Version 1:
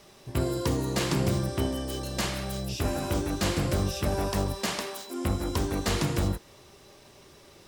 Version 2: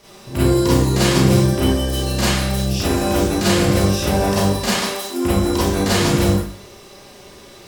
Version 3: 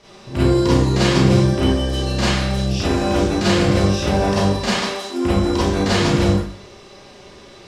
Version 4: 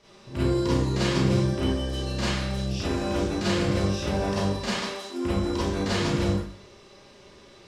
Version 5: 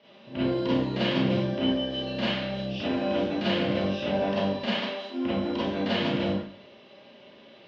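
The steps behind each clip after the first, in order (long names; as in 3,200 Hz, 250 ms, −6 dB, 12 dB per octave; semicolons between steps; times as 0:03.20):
four-comb reverb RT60 0.46 s, combs from 31 ms, DRR −8.5 dB; level +2.5 dB
low-pass filter 5,700 Hz 12 dB per octave
notch filter 740 Hz, Q 12; level −8.5 dB
loudspeaker in its box 180–3,800 Hz, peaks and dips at 240 Hz +8 dB, 380 Hz −5 dB, 610 Hz +7 dB, 1,200 Hz −5 dB, 3,000 Hz +7 dB; level −1 dB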